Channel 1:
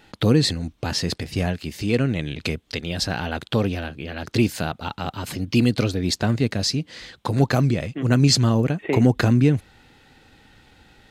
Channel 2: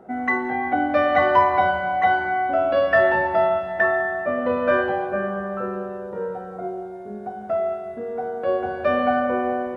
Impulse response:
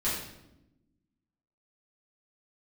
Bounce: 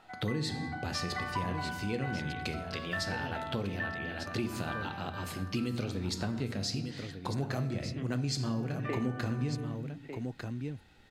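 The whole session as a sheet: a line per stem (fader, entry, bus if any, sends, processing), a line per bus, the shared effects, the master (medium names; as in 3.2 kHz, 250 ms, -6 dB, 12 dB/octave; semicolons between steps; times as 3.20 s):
-11.5 dB, 0.00 s, send -14 dB, echo send -9.5 dB, none
-2.0 dB, 0.00 s, no send, no echo send, inverse Chebyshev high-pass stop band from 260 Hz, stop band 60 dB; auto duck -12 dB, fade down 0.25 s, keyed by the first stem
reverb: on, RT60 0.90 s, pre-delay 5 ms
echo: delay 1199 ms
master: compression 4:1, threshold -30 dBFS, peak gain reduction 10 dB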